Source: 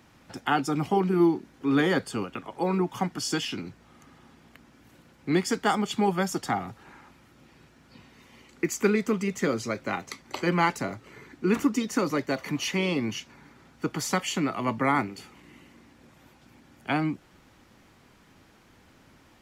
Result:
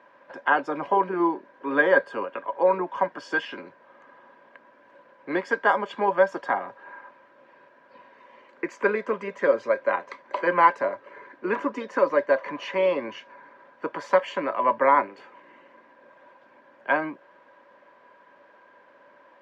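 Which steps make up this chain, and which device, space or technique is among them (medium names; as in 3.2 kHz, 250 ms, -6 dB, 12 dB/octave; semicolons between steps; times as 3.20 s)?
tin-can telephone (band-pass 410–2200 Hz; small resonant body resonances 570/990/1600 Hz, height 17 dB, ringing for 50 ms)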